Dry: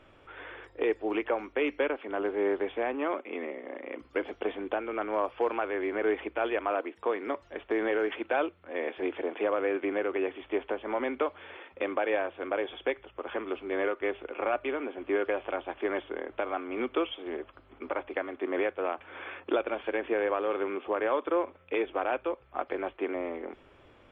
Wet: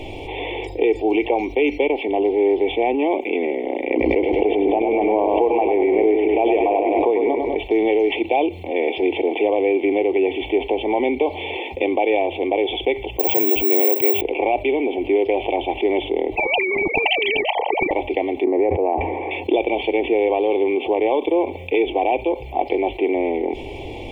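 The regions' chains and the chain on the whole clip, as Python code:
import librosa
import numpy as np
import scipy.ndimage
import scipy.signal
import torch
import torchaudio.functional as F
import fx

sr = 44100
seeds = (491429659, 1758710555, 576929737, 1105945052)

y = fx.chain(x, sr, fx.lowpass(hz=2200.0, slope=12),
    fx.echo_feedback(ms=100, feedback_pct=54, wet_db=-6.5),
    fx.pre_swell(db_per_s=24.0), at=(3.9, 7.58))
y = fx.chain(y, sr, fx.resample_bad(factor=2, down='none', up='zero_stuff'),
    fx.env_flatten(amount_pct=50), at=(13.19, 14.21))
y = fx.chain(y, sr, fx.sine_speech(),
    fx.peak_eq(hz=900.0, db=14.5, octaves=0.69),
    fx.spectral_comp(ratio=10.0), at=(16.36, 17.91))
y = fx.chain(y, sr, fx.lowpass(hz=1700.0, slope=24),
    fx.sustainer(db_per_s=47.0), at=(18.44, 19.31))
y = scipy.signal.sosfilt(scipy.signal.ellip(3, 1.0, 60, [910.0, 2200.0], 'bandstop', fs=sr, output='sos'), y)
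y = y + 0.4 * np.pad(y, (int(2.6 * sr / 1000.0), 0))[:len(y)]
y = fx.env_flatten(y, sr, amount_pct=50)
y = y * 10.0 ** (8.0 / 20.0)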